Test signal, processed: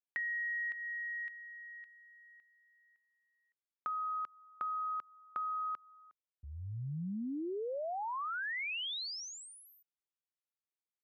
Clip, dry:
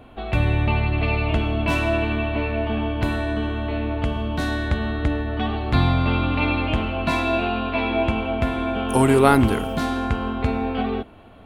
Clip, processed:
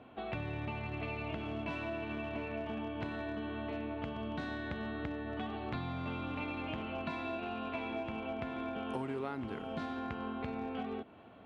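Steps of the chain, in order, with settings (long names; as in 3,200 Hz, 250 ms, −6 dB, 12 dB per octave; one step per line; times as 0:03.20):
in parallel at −11.5 dB: comparator with hysteresis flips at −17 dBFS
on the sum: band-pass filter 130–3,700 Hz
downward compressor 6 to 1, threshold −28 dBFS
level −8 dB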